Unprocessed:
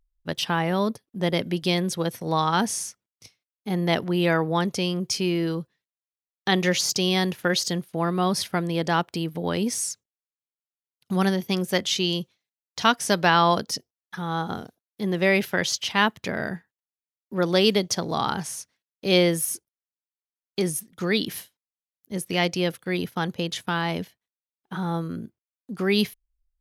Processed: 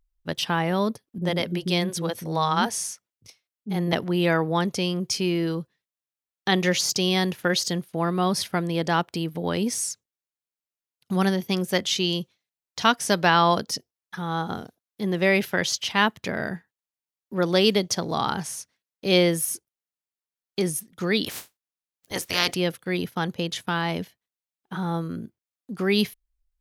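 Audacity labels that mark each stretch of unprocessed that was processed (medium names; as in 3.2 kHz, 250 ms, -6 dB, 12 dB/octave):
1.180000	3.930000	bands offset in time lows, highs 40 ms, split 330 Hz
21.240000	22.540000	spectral peaks clipped ceiling under each frame's peak by 25 dB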